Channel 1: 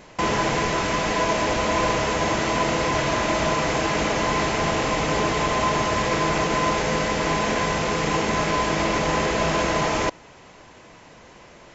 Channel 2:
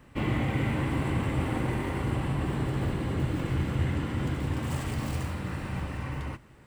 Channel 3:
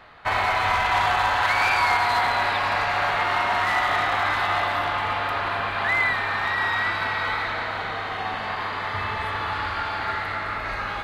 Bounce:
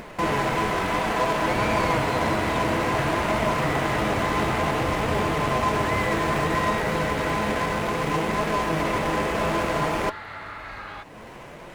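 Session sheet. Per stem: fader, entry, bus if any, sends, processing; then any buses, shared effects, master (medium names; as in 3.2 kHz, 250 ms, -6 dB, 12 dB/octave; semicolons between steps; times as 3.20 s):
+2.5 dB, 0.00 s, no send, median filter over 9 samples; flange 0.59 Hz, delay 4.2 ms, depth 6.6 ms, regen +65%
-4.0 dB, 1.30 s, no send, none
-10.0 dB, 0.00 s, no send, none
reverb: none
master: upward compressor, threshold -32 dBFS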